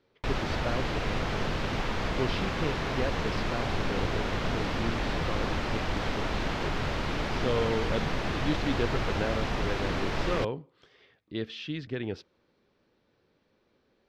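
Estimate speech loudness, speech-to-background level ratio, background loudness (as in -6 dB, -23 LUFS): -36.0 LUFS, -4.5 dB, -31.5 LUFS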